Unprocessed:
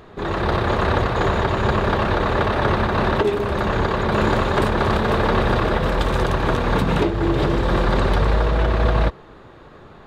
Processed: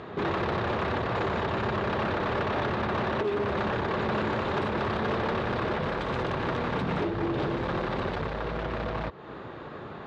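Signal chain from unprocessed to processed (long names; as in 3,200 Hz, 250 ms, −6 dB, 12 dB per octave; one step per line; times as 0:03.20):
downward compressor 6 to 1, threshold −26 dBFS, peak gain reduction 12 dB
hard clipping −28 dBFS, distortion −10 dB
band-pass filter 100–3,900 Hz
level +4 dB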